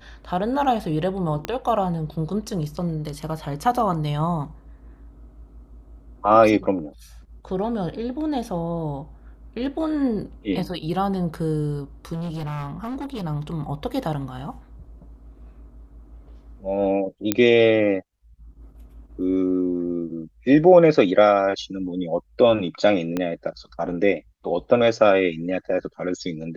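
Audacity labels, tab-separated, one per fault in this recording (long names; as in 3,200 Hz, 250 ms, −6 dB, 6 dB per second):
1.450000	1.450000	click −12 dBFS
12.130000	13.250000	clipping −26.5 dBFS
17.320000	17.320000	click −4 dBFS
23.170000	23.170000	click −12 dBFS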